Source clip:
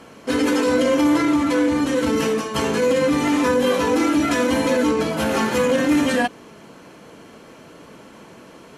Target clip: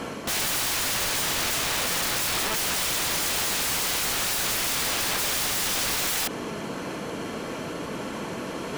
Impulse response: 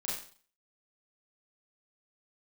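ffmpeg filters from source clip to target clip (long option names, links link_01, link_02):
-af "acontrast=51,aeval=exprs='(mod(9.44*val(0)+1,2)-1)/9.44':channel_layout=same,areverse,acompressor=mode=upward:threshold=-28dB:ratio=2.5,areverse,alimiter=limit=-23dB:level=0:latency=1:release=43,volume=1.5dB"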